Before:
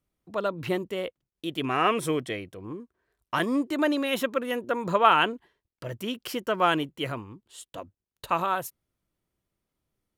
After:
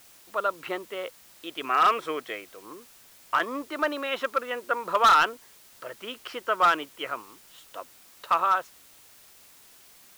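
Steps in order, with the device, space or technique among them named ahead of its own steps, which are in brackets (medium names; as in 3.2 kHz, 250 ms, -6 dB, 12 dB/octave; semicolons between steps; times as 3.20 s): drive-through speaker (band-pass 500–3500 Hz; peaking EQ 1.3 kHz +8 dB 0.41 oct; hard clipper -14 dBFS, distortion -11 dB; white noise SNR 25 dB)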